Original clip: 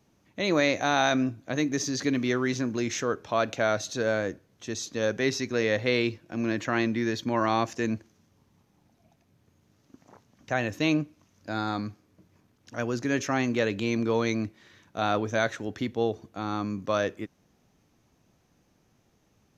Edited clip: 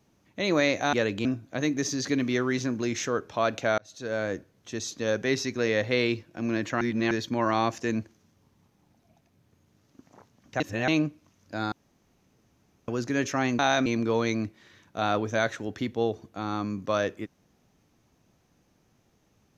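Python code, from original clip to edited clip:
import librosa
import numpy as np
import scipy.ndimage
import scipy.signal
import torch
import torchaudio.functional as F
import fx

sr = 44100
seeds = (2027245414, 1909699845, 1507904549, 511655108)

y = fx.edit(x, sr, fx.swap(start_s=0.93, length_s=0.27, other_s=13.54, other_length_s=0.32),
    fx.fade_in_span(start_s=3.73, length_s=0.56),
    fx.reverse_span(start_s=6.76, length_s=0.3),
    fx.reverse_span(start_s=10.55, length_s=0.28),
    fx.room_tone_fill(start_s=11.67, length_s=1.16), tone=tone)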